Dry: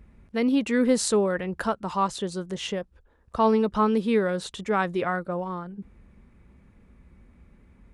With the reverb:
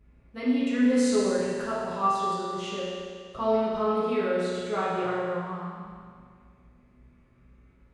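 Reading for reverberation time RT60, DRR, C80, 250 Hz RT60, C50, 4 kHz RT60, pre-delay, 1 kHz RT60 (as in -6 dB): 2.0 s, -9.5 dB, 0.0 dB, 2.0 s, -2.5 dB, 2.0 s, 8 ms, 2.0 s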